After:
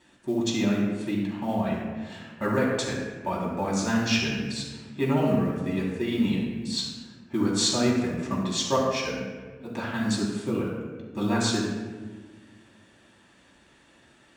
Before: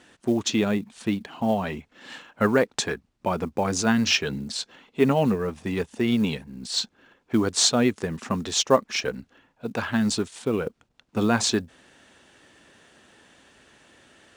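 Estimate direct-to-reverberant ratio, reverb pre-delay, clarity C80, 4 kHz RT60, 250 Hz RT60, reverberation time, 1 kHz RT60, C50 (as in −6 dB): −6.5 dB, 3 ms, 3.0 dB, 0.85 s, 2.3 s, 1.4 s, 1.3 s, 1.0 dB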